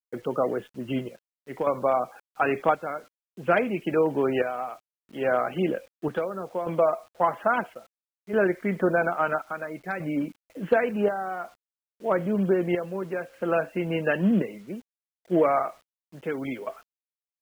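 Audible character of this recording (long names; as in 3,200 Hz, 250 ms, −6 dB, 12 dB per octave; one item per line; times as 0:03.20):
chopped level 0.6 Hz, depth 60%, duty 65%
a quantiser's noise floor 10 bits, dither none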